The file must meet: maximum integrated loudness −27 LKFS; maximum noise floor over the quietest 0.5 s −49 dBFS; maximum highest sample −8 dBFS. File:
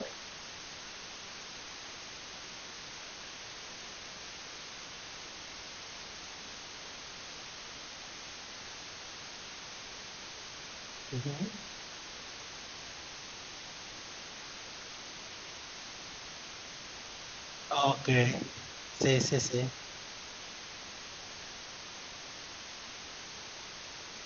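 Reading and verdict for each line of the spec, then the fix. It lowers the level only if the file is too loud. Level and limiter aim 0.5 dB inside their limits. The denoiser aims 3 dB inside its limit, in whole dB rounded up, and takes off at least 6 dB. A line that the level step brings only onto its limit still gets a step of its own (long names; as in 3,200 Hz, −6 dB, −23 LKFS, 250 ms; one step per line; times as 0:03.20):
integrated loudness −39.0 LKFS: in spec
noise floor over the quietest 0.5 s −46 dBFS: out of spec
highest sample −15.0 dBFS: in spec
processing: broadband denoise 6 dB, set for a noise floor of −46 dBFS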